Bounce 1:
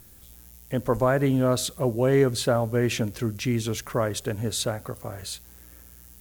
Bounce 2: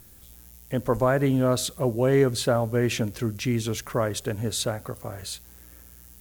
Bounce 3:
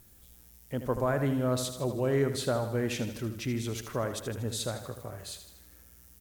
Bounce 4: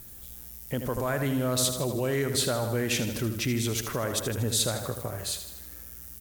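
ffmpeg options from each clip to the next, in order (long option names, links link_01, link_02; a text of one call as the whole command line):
ffmpeg -i in.wav -af anull out.wav
ffmpeg -i in.wav -af "aecho=1:1:79|158|237|316|395|474:0.316|0.177|0.0992|0.0555|0.0311|0.0174,volume=-7dB" out.wav
ffmpeg -i in.wav -filter_complex "[0:a]highshelf=frequency=10000:gain=6.5,acrossover=split=1900[link_01][link_02];[link_01]alimiter=level_in=5dB:limit=-24dB:level=0:latency=1:release=145,volume=-5dB[link_03];[link_03][link_02]amix=inputs=2:normalize=0,volume=8dB" out.wav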